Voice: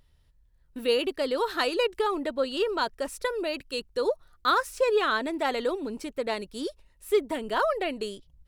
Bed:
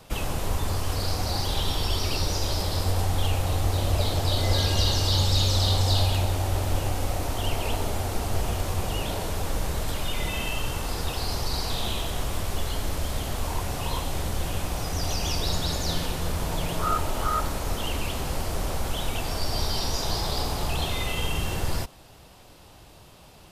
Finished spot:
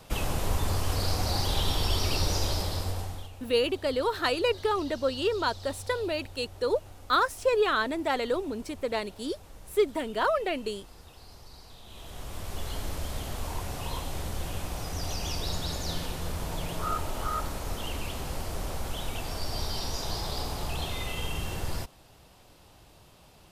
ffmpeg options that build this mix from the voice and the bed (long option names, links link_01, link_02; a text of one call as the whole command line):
ffmpeg -i stem1.wav -i stem2.wav -filter_complex "[0:a]adelay=2650,volume=-0.5dB[link_01];[1:a]volume=15dB,afade=type=out:start_time=2.39:duration=0.91:silence=0.0944061,afade=type=in:start_time=11.86:duration=0.89:silence=0.158489[link_02];[link_01][link_02]amix=inputs=2:normalize=0" out.wav